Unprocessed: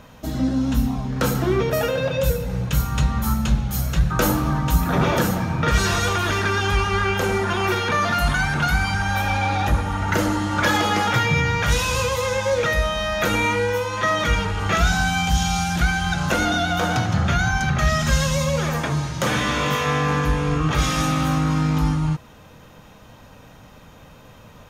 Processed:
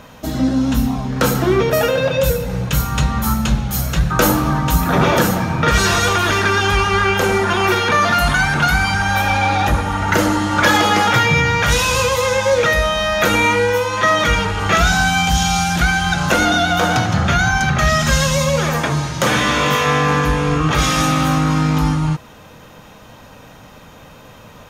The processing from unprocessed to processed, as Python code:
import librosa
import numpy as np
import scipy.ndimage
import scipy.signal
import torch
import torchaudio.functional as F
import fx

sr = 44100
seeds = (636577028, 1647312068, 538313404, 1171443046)

y = fx.low_shelf(x, sr, hz=160.0, db=-5.5)
y = F.gain(torch.from_numpy(y), 6.5).numpy()